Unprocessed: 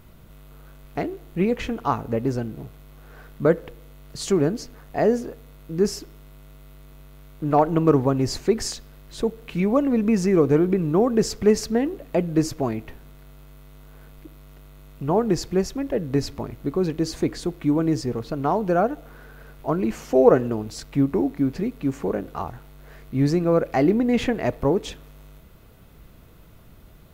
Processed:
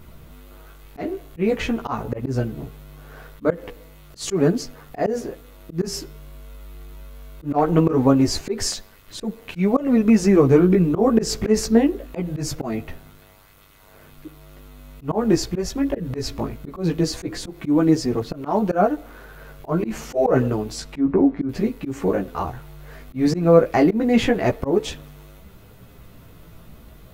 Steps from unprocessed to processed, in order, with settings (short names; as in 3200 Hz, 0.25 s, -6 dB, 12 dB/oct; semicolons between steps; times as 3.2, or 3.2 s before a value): chorus voices 2, 0.22 Hz, delay 14 ms, depth 4.3 ms; 20.75–21.49 treble ducked by the level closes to 1600 Hz, closed at -20 dBFS; auto swell 0.13 s; gain +7.5 dB